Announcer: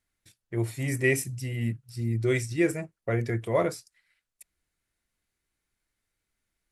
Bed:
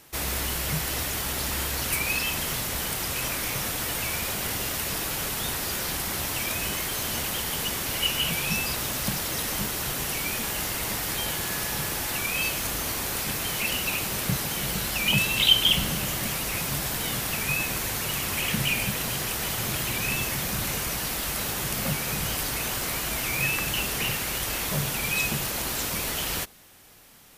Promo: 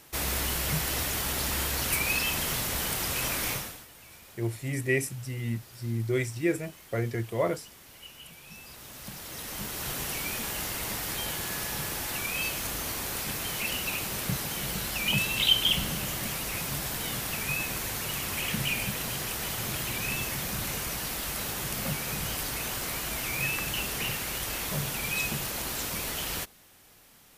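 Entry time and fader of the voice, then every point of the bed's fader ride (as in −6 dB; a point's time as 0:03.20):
3.85 s, −2.5 dB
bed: 0:03.52 −1 dB
0:03.88 −22 dB
0:08.41 −22 dB
0:09.90 −4 dB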